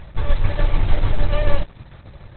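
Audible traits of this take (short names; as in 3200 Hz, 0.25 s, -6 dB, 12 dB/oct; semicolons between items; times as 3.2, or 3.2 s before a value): tremolo saw down 6.8 Hz, depth 50%; Opus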